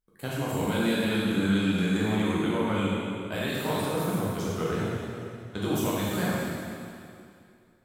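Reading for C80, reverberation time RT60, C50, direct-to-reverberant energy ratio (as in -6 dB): -1.5 dB, 2.4 s, -3.0 dB, -7.0 dB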